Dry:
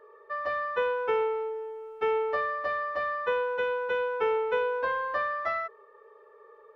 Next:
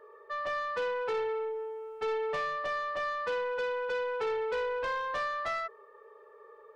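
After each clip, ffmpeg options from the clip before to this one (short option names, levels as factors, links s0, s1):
-af "asoftclip=type=tanh:threshold=0.0376"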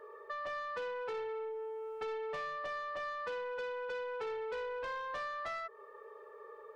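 -af "acompressor=threshold=0.00794:ratio=4,volume=1.26"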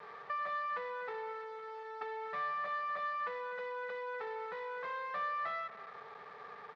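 -filter_complex "[0:a]acrusher=bits=6:dc=4:mix=0:aa=0.000001,highpass=160,equalizer=f=190:t=q:w=4:g=5,equalizer=f=300:t=q:w=4:g=-7,equalizer=f=790:t=q:w=4:g=5,equalizer=f=1200:t=q:w=4:g=9,equalizer=f=1900:t=q:w=4:g=7,equalizer=f=2900:t=q:w=4:g=-7,lowpass=f=3800:w=0.5412,lowpass=f=3800:w=1.3066,asplit=2[s0][s1];[s1]adelay=244,lowpass=f=990:p=1,volume=0.251,asplit=2[s2][s3];[s3]adelay=244,lowpass=f=990:p=1,volume=0.53,asplit=2[s4][s5];[s5]adelay=244,lowpass=f=990:p=1,volume=0.53,asplit=2[s6][s7];[s7]adelay=244,lowpass=f=990:p=1,volume=0.53,asplit=2[s8][s9];[s9]adelay=244,lowpass=f=990:p=1,volume=0.53,asplit=2[s10][s11];[s11]adelay=244,lowpass=f=990:p=1,volume=0.53[s12];[s0][s2][s4][s6][s8][s10][s12]amix=inputs=7:normalize=0,volume=1.12"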